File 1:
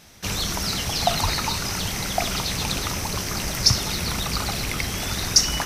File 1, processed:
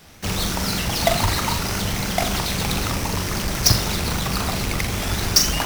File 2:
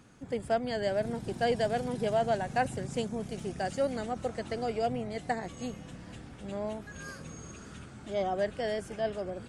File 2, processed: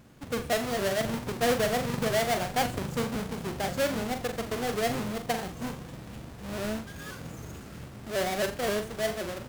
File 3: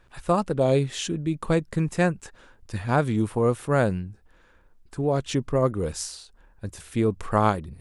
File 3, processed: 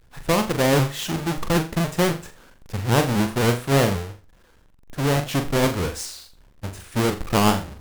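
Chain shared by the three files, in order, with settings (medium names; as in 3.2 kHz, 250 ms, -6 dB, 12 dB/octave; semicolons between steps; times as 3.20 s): square wave that keeps the level; flutter echo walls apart 7.2 m, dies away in 0.33 s; vibrato with a chosen wave saw up 3.8 Hz, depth 100 cents; trim -2.5 dB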